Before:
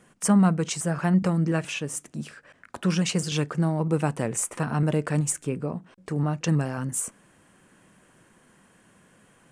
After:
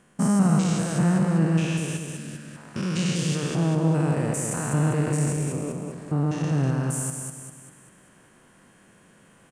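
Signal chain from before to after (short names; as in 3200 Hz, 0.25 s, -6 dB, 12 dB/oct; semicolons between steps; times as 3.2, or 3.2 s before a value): stepped spectrum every 0.2 s; feedback echo 0.198 s, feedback 46%, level -4.5 dB; gain +2.5 dB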